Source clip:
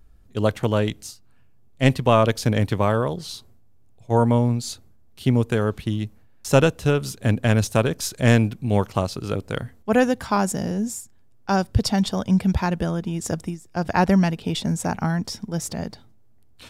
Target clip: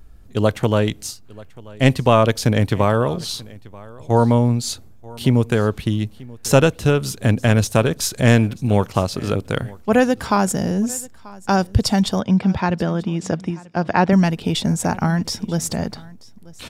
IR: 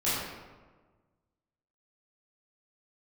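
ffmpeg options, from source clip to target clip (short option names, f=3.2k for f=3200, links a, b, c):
-filter_complex "[0:a]asplit=2[a][b];[b]acompressor=threshold=-29dB:ratio=6,volume=2dB[c];[a][c]amix=inputs=2:normalize=0,asettb=1/sr,asplit=3[d][e][f];[d]atrim=end=12.204[g];[e]atrim=start=12.2:end=14.13,asetpts=PTS-STARTPTS,afade=t=in:d=0.004:c=qsin,afade=t=out:st=1.926:d=0.004:c=qsin,highpass=130,lowpass=4.3k[h];[f]atrim=start=14.126[i];[g][h]acrossfade=d=0.004:c1=hsin:c2=qsin[j];[j][i]acrossfade=d=0.004:c1=qsin:c2=hsin,aecho=1:1:936:0.0794,volume=1dB"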